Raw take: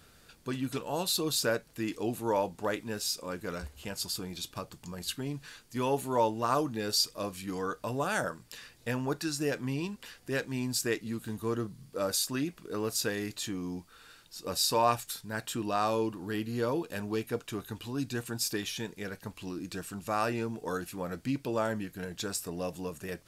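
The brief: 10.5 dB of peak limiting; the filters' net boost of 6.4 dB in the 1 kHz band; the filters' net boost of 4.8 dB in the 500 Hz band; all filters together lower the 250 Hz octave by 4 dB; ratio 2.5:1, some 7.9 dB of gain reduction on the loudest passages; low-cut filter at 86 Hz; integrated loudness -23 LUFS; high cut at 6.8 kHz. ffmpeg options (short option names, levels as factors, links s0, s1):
-af "highpass=86,lowpass=6800,equalizer=f=250:t=o:g=-8,equalizer=f=500:t=o:g=6,equalizer=f=1000:t=o:g=6.5,acompressor=threshold=0.0447:ratio=2.5,volume=5.01,alimiter=limit=0.266:level=0:latency=1"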